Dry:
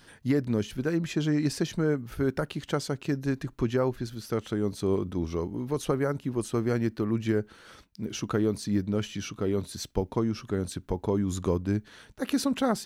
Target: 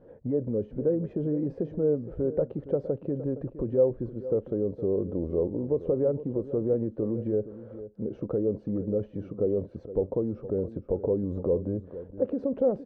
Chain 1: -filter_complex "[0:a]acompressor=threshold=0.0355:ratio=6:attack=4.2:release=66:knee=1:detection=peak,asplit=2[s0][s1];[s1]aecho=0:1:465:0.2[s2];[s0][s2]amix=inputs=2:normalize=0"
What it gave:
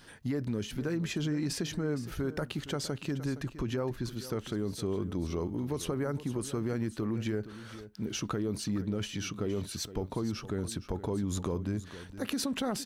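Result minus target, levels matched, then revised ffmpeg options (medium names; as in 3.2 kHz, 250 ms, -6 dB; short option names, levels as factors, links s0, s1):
500 Hz band -5.0 dB
-filter_complex "[0:a]acompressor=threshold=0.0355:ratio=6:attack=4.2:release=66:knee=1:detection=peak,lowpass=f=520:t=q:w=6.2,asplit=2[s0][s1];[s1]aecho=0:1:465:0.2[s2];[s0][s2]amix=inputs=2:normalize=0"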